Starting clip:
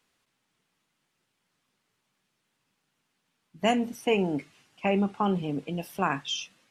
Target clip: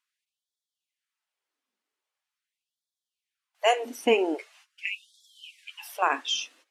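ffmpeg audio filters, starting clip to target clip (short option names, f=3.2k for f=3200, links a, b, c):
-af "agate=range=-14dB:threshold=-58dB:ratio=16:detection=peak,afftfilt=real='re*gte(b*sr/1024,210*pow(3300/210,0.5+0.5*sin(2*PI*0.43*pts/sr)))':imag='im*gte(b*sr/1024,210*pow(3300/210,0.5+0.5*sin(2*PI*0.43*pts/sr)))':win_size=1024:overlap=0.75,volume=3.5dB"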